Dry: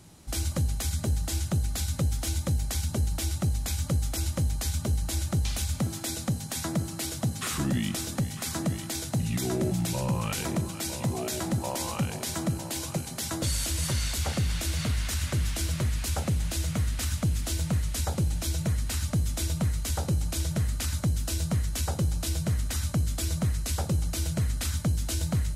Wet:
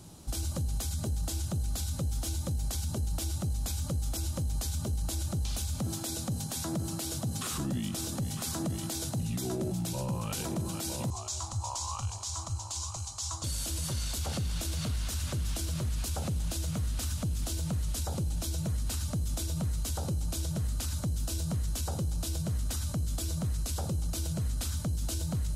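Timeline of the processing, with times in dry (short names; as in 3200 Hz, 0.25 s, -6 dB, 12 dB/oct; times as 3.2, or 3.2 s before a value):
11.1–13.44 EQ curve 100 Hz 0 dB, 160 Hz -27 dB, 530 Hz -21 dB, 750 Hz -9 dB, 1100 Hz +2 dB, 1600 Hz -15 dB, 7000 Hz +2 dB, 13000 Hz -23 dB
whole clip: bell 2000 Hz -9 dB 0.74 oct; limiter -28 dBFS; gain +2.5 dB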